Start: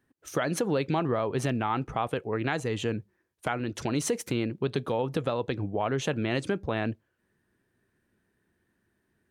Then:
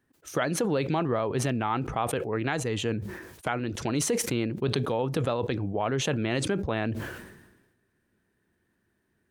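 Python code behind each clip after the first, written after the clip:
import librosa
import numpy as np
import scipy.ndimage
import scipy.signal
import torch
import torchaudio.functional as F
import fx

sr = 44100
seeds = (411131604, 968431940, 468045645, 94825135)

y = fx.sustainer(x, sr, db_per_s=51.0)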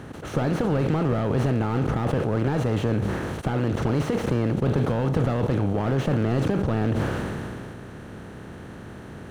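y = fx.bin_compress(x, sr, power=0.4)
y = fx.bass_treble(y, sr, bass_db=8, treble_db=-11)
y = fx.slew_limit(y, sr, full_power_hz=78.0)
y = y * 10.0 ** (-3.5 / 20.0)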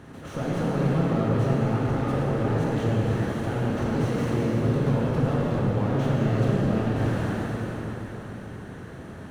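y = fx.rev_plate(x, sr, seeds[0], rt60_s=4.3, hf_ratio=0.8, predelay_ms=0, drr_db=-5.5)
y = y * 10.0 ** (-7.5 / 20.0)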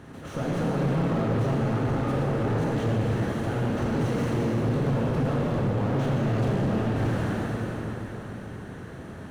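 y = np.clip(x, -10.0 ** (-20.5 / 20.0), 10.0 ** (-20.5 / 20.0))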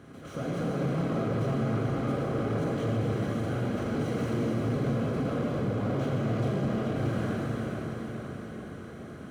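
y = fx.notch_comb(x, sr, f0_hz=900.0)
y = fx.echo_feedback(y, sr, ms=427, feedback_pct=57, wet_db=-8)
y = y * 10.0 ** (-3.5 / 20.0)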